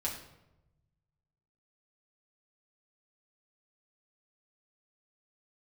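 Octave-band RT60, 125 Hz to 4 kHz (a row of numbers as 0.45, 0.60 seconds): 2.0, 1.2, 1.0, 0.85, 0.70, 0.60 seconds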